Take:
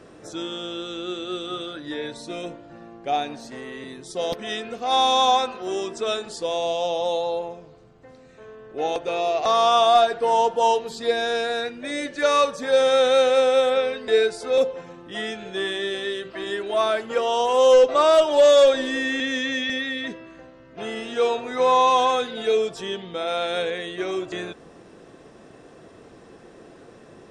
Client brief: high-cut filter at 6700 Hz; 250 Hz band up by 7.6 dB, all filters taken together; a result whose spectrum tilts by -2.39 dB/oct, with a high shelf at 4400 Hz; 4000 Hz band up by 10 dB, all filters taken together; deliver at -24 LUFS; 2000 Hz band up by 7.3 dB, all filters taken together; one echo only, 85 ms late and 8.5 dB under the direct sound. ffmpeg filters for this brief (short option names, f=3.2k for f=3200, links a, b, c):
-af "lowpass=6.7k,equalizer=f=250:t=o:g=9,equalizer=f=2k:t=o:g=6,equalizer=f=4k:t=o:g=8.5,highshelf=f=4.4k:g=3.5,aecho=1:1:85:0.376,volume=-7dB"